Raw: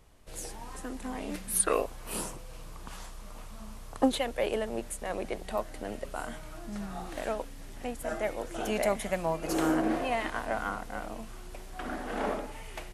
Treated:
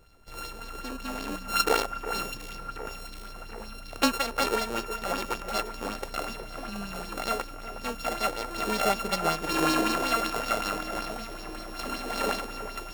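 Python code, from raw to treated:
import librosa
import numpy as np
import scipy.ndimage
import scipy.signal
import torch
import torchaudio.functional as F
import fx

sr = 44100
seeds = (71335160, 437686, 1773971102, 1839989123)

y = np.r_[np.sort(x[:len(x) // 32 * 32].reshape(-1, 32), axis=1).ravel(), x[len(x) // 32 * 32:]]
y = fx.echo_alternate(y, sr, ms=364, hz=2300.0, feedback_pct=80, wet_db=-11.0)
y = fx.bell_lfo(y, sr, hz=5.3, low_hz=390.0, high_hz=5200.0, db=9)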